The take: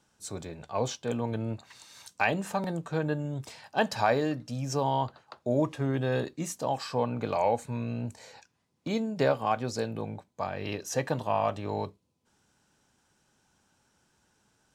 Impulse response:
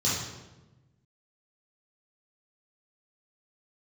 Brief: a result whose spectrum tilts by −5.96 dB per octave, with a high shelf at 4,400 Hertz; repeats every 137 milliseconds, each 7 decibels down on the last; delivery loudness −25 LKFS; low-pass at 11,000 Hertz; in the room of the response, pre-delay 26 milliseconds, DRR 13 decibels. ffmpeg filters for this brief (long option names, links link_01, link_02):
-filter_complex "[0:a]lowpass=11000,highshelf=frequency=4400:gain=-6.5,aecho=1:1:137|274|411|548|685:0.447|0.201|0.0905|0.0407|0.0183,asplit=2[link_01][link_02];[1:a]atrim=start_sample=2205,adelay=26[link_03];[link_02][link_03]afir=irnorm=-1:irlink=0,volume=-23.5dB[link_04];[link_01][link_04]amix=inputs=2:normalize=0,volume=5dB"